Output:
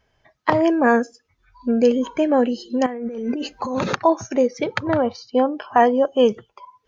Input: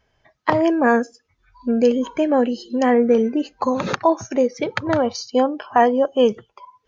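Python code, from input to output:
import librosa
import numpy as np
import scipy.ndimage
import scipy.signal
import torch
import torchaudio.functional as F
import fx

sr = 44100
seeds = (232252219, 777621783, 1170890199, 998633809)

y = fx.over_compress(x, sr, threshold_db=-26.0, ratio=-1.0, at=(2.86, 3.84))
y = fx.air_absorb(y, sr, metres=210.0, at=(4.9, 5.56))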